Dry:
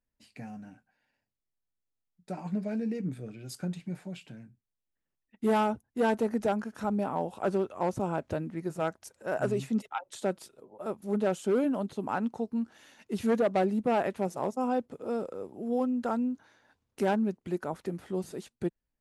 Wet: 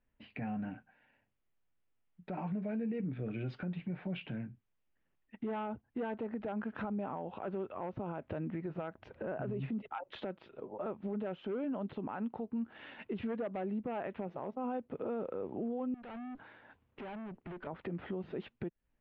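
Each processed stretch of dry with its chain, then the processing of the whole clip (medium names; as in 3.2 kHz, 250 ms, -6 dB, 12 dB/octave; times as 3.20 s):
8.95–10.04 s: bass shelf 460 Hz +9.5 dB + compression 3:1, threshold -27 dBFS
15.94–17.67 s: compression 10:1, threshold -35 dBFS + valve stage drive 50 dB, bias 0.35
whole clip: steep low-pass 3.1 kHz 36 dB/octave; compression 6:1, threshold -39 dBFS; peak limiter -38 dBFS; trim +7.5 dB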